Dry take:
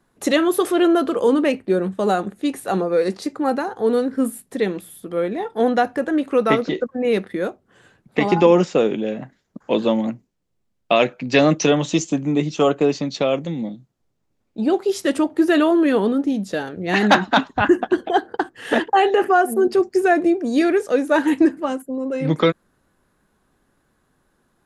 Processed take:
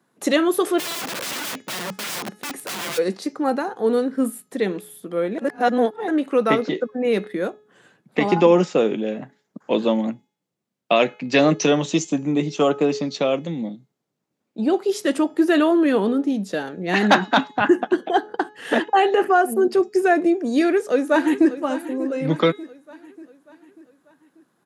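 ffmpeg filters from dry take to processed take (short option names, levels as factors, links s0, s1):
-filter_complex "[0:a]asplit=3[s0][s1][s2];[s0]afade=t=out:st=0.78:d=0.02[s3];[s1]aeval=exprs='(mod(14.1*val(0)+1,2)-1)/14.1':c=same,afade=t=in:st=0.78:d=0.02,afade=t=out:st=2.97:d=0.02[s4];[s2]afade=t=in:st=2.97:d=0.02[s5];[s3][s4][s5]amix=inputs=3:normalize=0,asplit=2[s6][s7];[s7]afade=t=in:st=20.54:d=0.01,afade=t=out:st=21.58:d=0.01,aecho=0:1:590|1180|1770|2360|2950:0.199526|0.0997631|0.0498816|0.0249408|0.0124704[s8];[s6][s8]amix=inputs=2:normalize=0,asplit=3[s9][s10][s11];[s9]atrim=end=5.382[s12];[s10]atrim=start=5.378:end=6.082,asetpts=PTS-STARTPTS,areverse[s13];[s11]atrim=start=6.078[s14];[s12][s13]acrossfade=d=0.004:c1=hsin:c2=hsin[s15];[s15][s14]acrossfade=d=0.004:c1=hsin:c2=hsin,highpass=f=140:w=0.5412,highpass=f=140:w=1.3066,bandreject=f=423:t=h:w=4,bandreject=f=846:t=h:w=4,bandreject=f=1269:t=h:w=4,bandreject=f=1692:t=h:w=4,bandreject=f=2115:t=h:w=4,bandreject=f=2538:t=h:w=4,bandreject=f=2961:t=h:w=4,bandreject=f=3384:t=h:w=4,bandreject=f=3807:t=h:w=4,bandreject=f=4230:t=h:w=4,bandreject=f=4653:t=h:w=4,bandreject=f=5076:t=h:w=4,bandreject=f=5499:t=h:w=4,bandreject=f=5922:t=h:w=4,bandreject=f=6345:t=h:w=4,bandreject=f=6768:t=h:w=4,bandreject=f=7191:t=h:w=4,volume=0.891"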